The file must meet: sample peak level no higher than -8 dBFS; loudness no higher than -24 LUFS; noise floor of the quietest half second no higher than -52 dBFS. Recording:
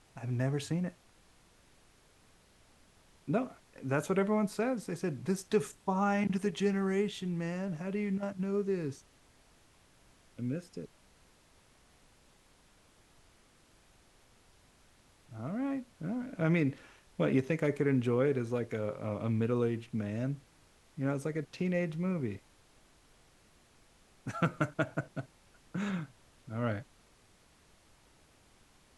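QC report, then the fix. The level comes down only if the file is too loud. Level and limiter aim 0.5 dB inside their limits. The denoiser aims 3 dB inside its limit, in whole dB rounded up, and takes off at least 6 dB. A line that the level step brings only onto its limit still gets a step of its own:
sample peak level -16.0 dBFS: OK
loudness -34.0 LUFS: OK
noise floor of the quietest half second -64 dBFS: OK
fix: none

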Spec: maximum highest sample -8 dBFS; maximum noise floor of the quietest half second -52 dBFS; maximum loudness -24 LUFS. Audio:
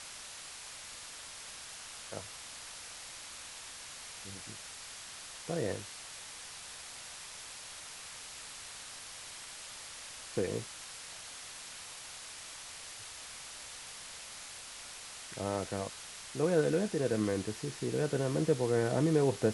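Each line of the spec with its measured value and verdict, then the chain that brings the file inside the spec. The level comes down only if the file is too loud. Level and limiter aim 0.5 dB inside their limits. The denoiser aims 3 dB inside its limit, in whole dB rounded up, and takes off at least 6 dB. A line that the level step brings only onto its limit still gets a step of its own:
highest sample -15.5 dBFS: OK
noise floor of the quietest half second -47 dBFS: fail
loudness -37.5 LUFS: OK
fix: denoiser 8 dB, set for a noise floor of -47 dBFS

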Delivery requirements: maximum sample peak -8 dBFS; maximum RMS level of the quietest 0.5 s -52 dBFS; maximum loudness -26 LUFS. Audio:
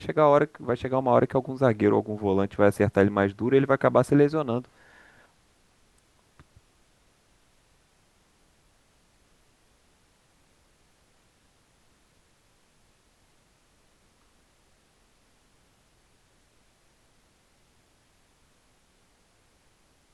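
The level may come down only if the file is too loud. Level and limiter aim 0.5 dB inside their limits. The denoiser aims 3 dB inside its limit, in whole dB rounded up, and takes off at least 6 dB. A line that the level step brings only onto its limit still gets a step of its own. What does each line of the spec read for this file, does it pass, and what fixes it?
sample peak -5.5 dBFS: fail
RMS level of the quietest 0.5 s -64 dBFS: OK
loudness -23.5 LUFS: fail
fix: gain -3 dB

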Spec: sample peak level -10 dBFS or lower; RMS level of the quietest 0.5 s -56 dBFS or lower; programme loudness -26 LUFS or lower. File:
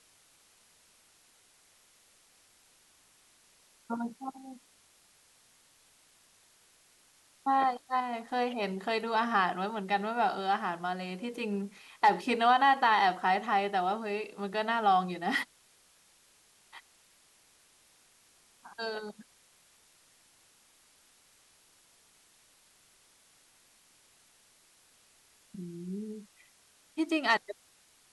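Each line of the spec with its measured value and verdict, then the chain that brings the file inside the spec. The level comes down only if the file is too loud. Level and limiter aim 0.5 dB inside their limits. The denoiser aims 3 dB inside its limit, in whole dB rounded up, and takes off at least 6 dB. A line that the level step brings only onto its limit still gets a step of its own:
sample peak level -13.0 dBFS: OK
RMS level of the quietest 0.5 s -64 dBFS: OK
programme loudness -30.5 LUFS: OK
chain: none

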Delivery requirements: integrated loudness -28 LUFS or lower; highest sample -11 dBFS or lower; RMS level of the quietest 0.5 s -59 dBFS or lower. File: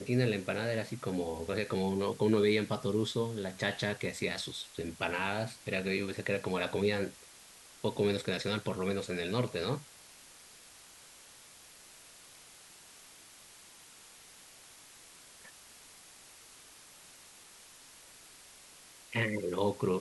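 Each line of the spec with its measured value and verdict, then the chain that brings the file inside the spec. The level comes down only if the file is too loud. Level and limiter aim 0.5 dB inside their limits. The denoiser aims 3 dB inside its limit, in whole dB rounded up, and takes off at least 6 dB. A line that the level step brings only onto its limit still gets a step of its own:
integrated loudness -33.5 LUFS: OK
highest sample -16.0 dBFS: OK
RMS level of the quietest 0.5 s -56 dBFS: fail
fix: denoiser 6 dB, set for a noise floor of -56 dBFS

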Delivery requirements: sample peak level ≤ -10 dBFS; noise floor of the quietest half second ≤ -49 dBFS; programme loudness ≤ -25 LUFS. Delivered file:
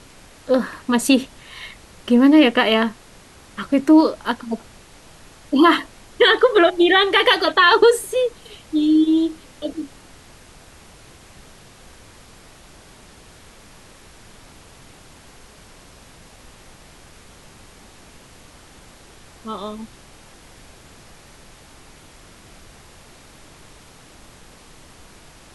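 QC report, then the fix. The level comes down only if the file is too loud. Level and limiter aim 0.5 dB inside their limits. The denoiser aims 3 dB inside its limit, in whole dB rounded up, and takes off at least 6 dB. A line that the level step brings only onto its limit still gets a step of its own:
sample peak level -4.0 dBFS: fail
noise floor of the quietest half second -46 dBFS: fail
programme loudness -17.0 LUFS: fail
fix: gain -8.5 dB

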